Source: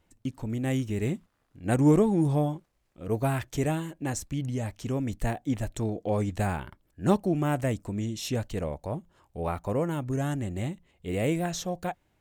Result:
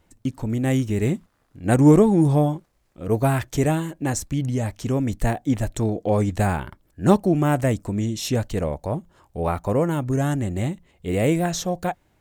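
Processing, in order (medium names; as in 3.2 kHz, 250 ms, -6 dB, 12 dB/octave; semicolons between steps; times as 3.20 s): peaking EQ 2.8 kHz -2.5 dB; trim +7 dB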